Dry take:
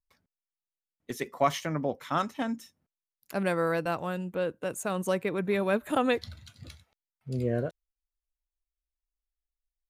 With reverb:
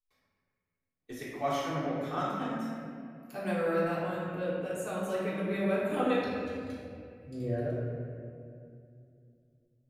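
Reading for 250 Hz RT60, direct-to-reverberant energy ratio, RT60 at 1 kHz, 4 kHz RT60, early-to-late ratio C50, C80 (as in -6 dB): 3.1 s, -9.0 dB, 2.1 s, 1.5 s, -2.0 dB, 0.0 dB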